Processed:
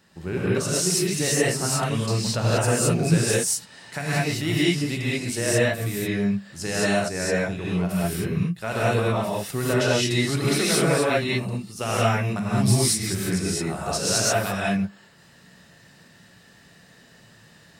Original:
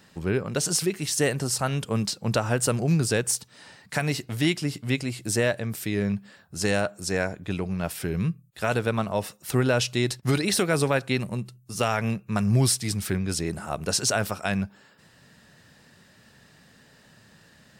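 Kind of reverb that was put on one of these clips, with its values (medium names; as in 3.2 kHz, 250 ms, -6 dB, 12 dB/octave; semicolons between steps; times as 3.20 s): gated-style reverb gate 240 ms rising, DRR -8 dB; trim -5.5 dB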